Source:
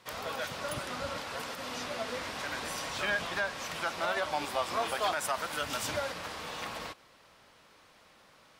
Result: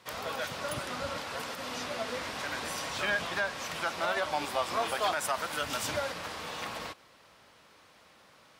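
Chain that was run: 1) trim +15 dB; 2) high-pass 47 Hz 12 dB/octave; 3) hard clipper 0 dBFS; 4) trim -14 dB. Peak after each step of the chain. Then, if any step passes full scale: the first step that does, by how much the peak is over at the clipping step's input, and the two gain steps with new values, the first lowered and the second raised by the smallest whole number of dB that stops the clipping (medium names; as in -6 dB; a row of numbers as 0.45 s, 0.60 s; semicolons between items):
-3.5 dBFS, -3.5 dBFS, -3.5 dBFS, -17.5 dBFS; nothing clips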